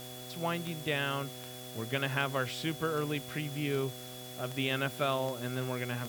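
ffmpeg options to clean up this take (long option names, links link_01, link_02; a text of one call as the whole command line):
ffmpeg -i in.wav -af "adeclick=threshold=4,bandreject=frequency=125.3:width_type=h:width=4,bandreject=frequency=250.6:width_type=h:width=4,bandreject=frequency=375.9:width_type=h:width=4,bandreject=frequency=501.2:width_type=h:width=4,bandreject=frequency=626.5:width_type=h:width=4,bandreject=frequency=751.8:width_type=h:width=4,bandreject=frequency=3400:width=30,afwtdn=0.0035" out.wav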